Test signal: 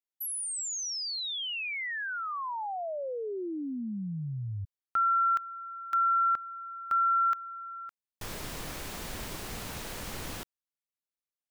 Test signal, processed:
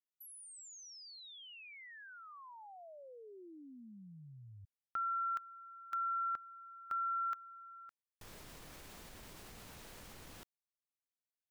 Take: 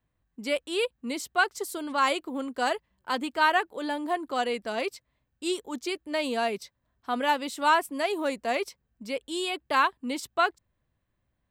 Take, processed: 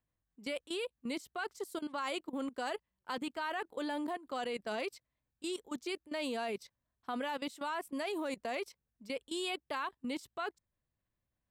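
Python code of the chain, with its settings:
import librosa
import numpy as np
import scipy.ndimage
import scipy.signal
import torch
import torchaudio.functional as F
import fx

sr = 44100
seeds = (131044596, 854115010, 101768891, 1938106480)

y = fx.level_steps(x, sr, step_db=17)
y = F.gain(torch.from_numpy(y), -2.5).numpy()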